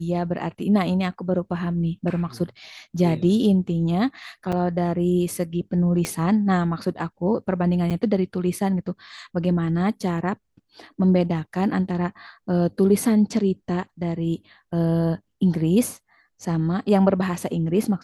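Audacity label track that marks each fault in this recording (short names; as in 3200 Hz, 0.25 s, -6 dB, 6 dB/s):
4.520000	4.530000	gap 5.5 ms
6.050000	6.050000	pop -11 dBFS
7.900000	7.910000	gap 6.8 ms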